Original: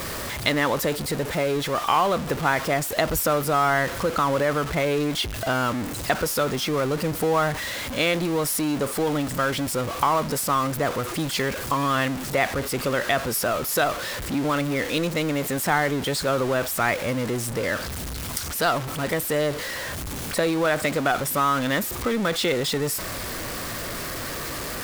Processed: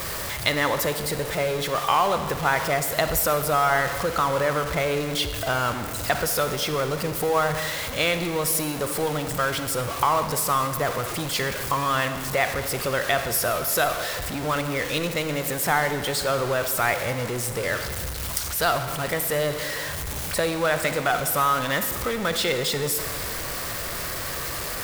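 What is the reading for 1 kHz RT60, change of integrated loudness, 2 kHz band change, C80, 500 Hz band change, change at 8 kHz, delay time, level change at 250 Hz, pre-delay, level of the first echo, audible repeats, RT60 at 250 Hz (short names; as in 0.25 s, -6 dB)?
1.9 s, 0.0 dB, +0.5 dB, 10.0 dB, -1.0 dB, +2.0 dB, none, -5.0 dB, 40 ms, none, none, 2.4 s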